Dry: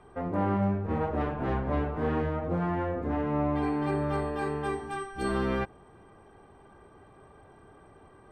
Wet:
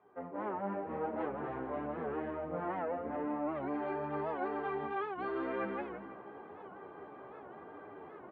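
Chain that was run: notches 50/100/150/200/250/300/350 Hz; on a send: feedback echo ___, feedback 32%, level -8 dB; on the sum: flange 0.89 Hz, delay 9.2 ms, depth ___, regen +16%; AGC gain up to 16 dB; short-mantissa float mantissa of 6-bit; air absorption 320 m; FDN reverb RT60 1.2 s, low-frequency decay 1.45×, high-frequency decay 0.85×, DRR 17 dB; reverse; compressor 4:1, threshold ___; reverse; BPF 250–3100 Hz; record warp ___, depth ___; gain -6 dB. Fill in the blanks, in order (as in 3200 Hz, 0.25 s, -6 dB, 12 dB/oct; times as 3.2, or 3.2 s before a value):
0.164 s, 7 ms, -28 dBFS, 78 rpm, 160 cents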